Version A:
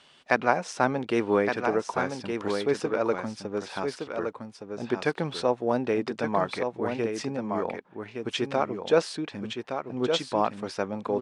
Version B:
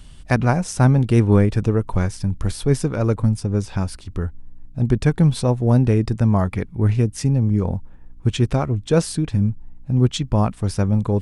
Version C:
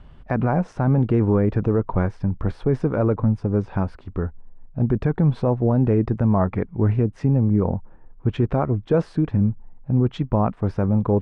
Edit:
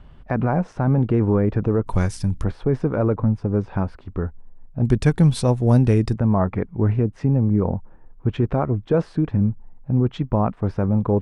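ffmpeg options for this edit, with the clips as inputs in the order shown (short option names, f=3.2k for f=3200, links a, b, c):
-filter_complex "[1:a]asplit=2[a][b];[2:a]asplit=3[c][d][e];[c]atrim=end=1.862[f];[a]atrim=start=1.858:end=2.442[g];[d]atrim=start=2.438:end=4.832[h];[b]atrim=start=4.828:end=6.142[i];[e]atrim=start=6.138[j];[f][g]acrossfade=d=0.004:c1=hsin:c2=hsin[k];[k][h]acrossfade=d=0.004:c1=hsin:c2=hsin[l];[l][i]acrossfade=d=0.004:c1=hsin:c2=hsin[m];[m][j]acrossfade=d=0.004:c1=hsin:c2=hsin"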